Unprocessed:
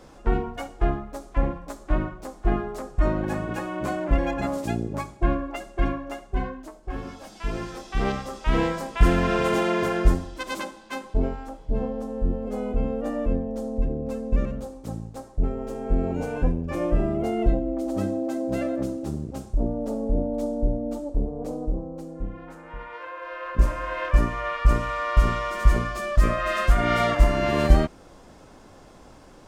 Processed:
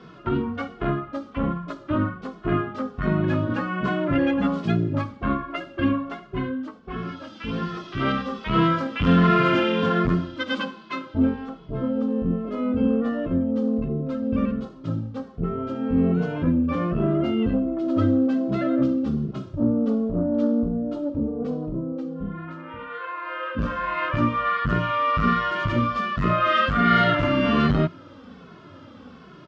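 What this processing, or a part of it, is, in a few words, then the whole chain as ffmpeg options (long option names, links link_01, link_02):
barber-pole flanger into a guitar amplifier: -filter_complex "[0:a]asplit=2[link_01][link_02];[link_02]adelay=2.3,afreqshift=-1.3[link_03];[link_01][link_03]amix=inputs=2:normalize=1,asoftclip=type=tanh:threshold=-17dB,highpass=100,equalizer=frequency=100:width_type=q:width=4:gain=8,equalizer=frequency=170:width_type=q:width=4:gain=7,equalizer=frequency=250:width_type=q:width=4:gain=8,equalizer=frequency=780:width_type=q:width=4:gain=-8,equalizer=frequency=1300:width_type=q:width=4:gain=9,equalizer=frequency=3100:width_type=q:width=4:gain=6,lowpass=frequency=4500:width=0.5412,lowpass=frequency=4500:width=1.3066,volume=5dB"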